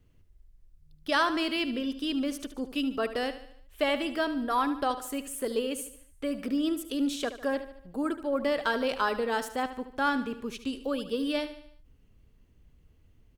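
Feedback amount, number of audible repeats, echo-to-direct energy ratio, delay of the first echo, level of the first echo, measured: 49%, 4, -11.5 dB, 74 ms, -12.5 dB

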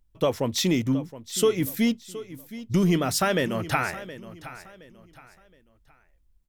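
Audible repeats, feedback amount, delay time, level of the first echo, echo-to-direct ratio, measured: 2, 32%, 719 ms, -15.5 dB, -15.0 dB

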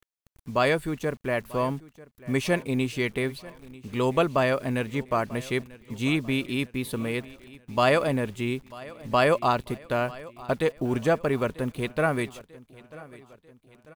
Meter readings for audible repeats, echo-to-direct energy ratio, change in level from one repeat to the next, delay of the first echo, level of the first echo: 3, -19.0 dB, -6.0 dB, 942 ms, -20.0 dB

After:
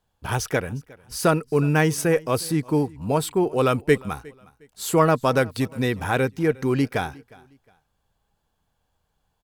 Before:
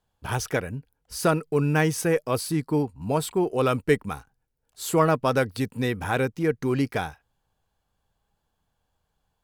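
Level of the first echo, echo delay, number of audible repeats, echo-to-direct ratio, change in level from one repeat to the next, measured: -23.5 dB, 359 ms, 2, -23.0 dB, -10.5 dB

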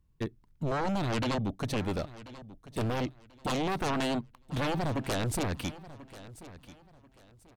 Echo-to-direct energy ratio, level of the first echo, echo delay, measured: -16.5 dB, -17.0 dB, 1038 ms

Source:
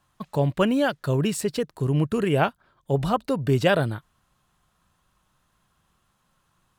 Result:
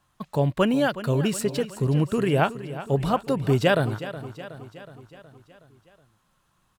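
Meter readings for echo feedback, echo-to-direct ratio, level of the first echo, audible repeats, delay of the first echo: 58%, -12.0 dB, -14.0 dB, 5, 369 ms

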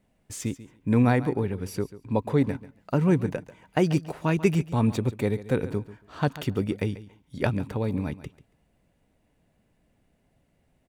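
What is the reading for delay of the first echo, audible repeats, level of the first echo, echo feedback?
140 ms, 2, -16.0 dB, 18%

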